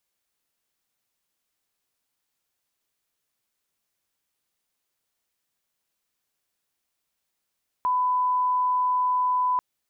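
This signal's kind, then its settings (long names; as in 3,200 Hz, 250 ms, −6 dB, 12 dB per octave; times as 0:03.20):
line-up tone −20 dBFS 1.74 s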